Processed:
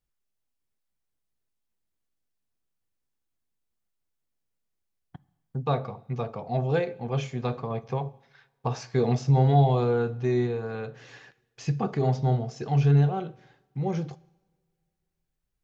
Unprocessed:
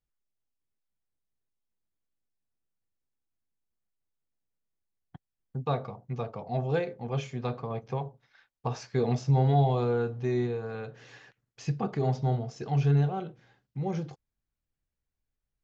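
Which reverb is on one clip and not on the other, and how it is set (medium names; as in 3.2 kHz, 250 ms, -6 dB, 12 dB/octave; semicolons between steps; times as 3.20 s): two-slope reverb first 0.86 s, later 2.5 s, from -19 dB, DRR 19 dB; trim +3 dB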